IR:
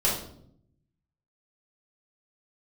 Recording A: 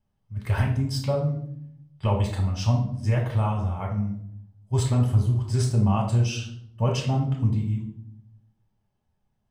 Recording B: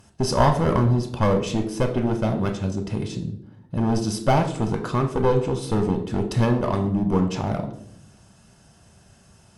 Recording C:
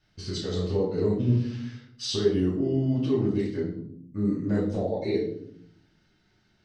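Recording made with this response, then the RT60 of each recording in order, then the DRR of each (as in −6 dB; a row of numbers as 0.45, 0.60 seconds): C; 0.65, 0.70, 0.65 seconds; −1.5, 3.5, −7.5 decibels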